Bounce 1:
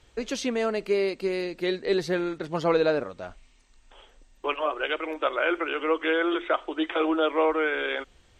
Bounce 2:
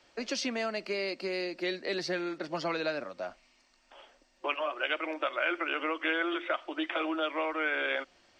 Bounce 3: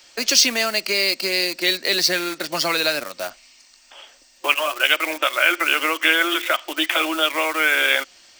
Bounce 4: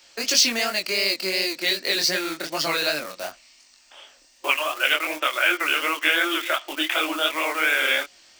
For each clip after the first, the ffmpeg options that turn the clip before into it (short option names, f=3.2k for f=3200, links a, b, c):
-filter_complex "[0:a]superequalizer=7b=0.501:8b=1.41:13b=0.708:14b=1.78,acrossover=split=200|1600[a][b][c];[b]acompressor=threshold=-32dB:ratio=6[d];[a][d][c]amix=inputs=3:normalize=0,acrossover=split=210 6800:gain=0.1 1 0.158[e][f][g];[e][f][g]amix=inputs=3:normalize=0"
-filter_complex "[0:a]asplit=2[a][b];[b]aeval=exprs='val(0)*gte(abs(val(0)),0.0133)':c=same,volume=-8dB[c];[a][c]amix=inputs=2:normalize=0,crystalizer=i=8:c=0,volume=3dB"
-af "flanger=delay=19.5:depth=7.1:speed=2.7"